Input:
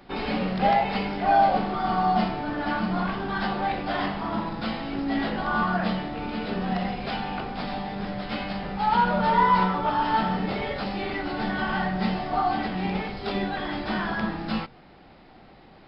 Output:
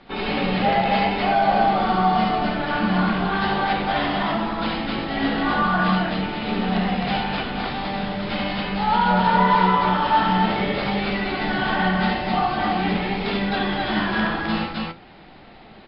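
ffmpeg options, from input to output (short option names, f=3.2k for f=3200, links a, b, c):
-filter_complex "[0:a]lowpass=f=4.1k:w=0.5412,lowpass=f=4.1k:w=1.3066,highshelf=f=3.2k:g=9,asplit=2[a][b];[b]alimiter=limit=-16.5dB:level=0:latency=1,volume=-1dB[c];[a][c]amix=inputs=2:normalize=0,flanger=delay=4.3:depth=8.5:regen=69:speed=0.45:shape=sinusoidal,aecho=1:1:69.97|259.5:0.708|0.891"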